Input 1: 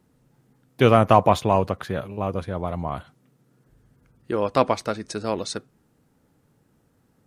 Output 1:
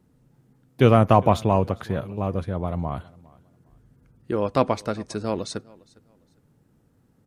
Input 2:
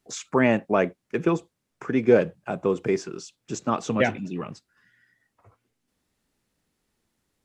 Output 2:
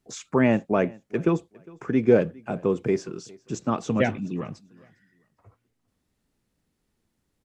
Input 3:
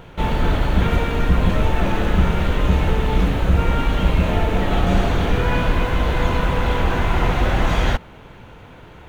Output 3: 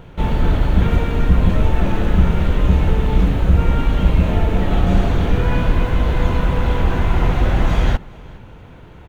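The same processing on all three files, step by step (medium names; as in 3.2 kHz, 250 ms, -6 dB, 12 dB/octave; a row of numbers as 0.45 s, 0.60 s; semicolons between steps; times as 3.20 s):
bass shelf 380 Hz +7 dB; on a send: feedback delay 406 ms, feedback 25%, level -24 dB; on the sum: trim -3.5 dB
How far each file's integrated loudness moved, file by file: -0.5 LU, 0.0 LU, +2.0 LU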